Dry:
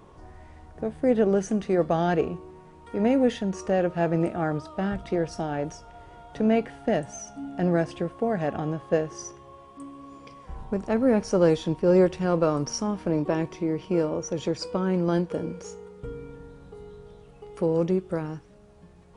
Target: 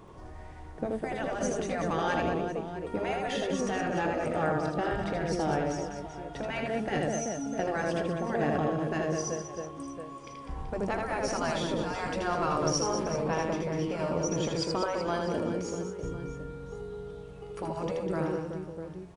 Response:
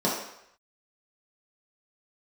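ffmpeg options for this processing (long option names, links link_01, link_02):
-af "aecho=1:1:80|200|380|650|1055:0.631|0.398|0.251|0.158|0.1,afftfilt=real='re*lt(hypot(re,im),0.355)':imag='im*lt(hypot(re,im),0.355)':win_size=1024:overlap=0.75"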